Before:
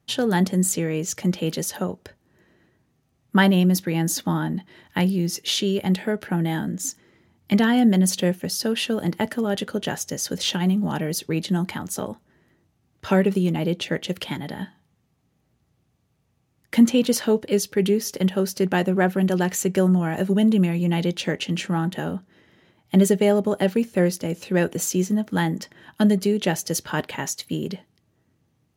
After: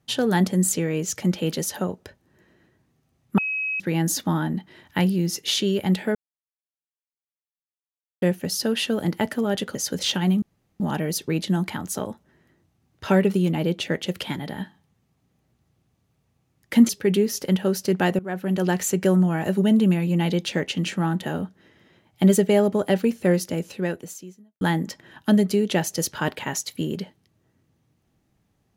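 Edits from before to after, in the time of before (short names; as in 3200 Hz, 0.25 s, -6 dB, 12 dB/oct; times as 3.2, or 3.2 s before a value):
3.38–3.8 bleep 2550 Hz -23.5 dBFS
6.15–8.22 mute
9.75–10.14 cut
10.81 insert room tone 0.38 s
16.9–17.61 cut
18.91–19.41 fade in, from -20 dB
24.3–25.33 fade out quadratic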